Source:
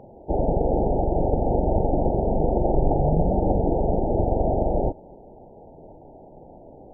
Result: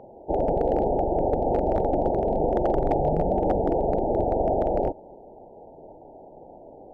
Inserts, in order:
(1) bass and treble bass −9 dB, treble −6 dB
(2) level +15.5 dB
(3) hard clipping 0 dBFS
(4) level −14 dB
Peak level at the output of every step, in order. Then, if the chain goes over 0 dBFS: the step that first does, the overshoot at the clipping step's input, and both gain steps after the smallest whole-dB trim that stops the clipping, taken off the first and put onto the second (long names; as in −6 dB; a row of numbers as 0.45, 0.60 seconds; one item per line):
−9.5, +6.0, 0.0, −14.0 dBFS
step 2, 6.0 dB
step 2 +9.5 dB, step 4 −8 dB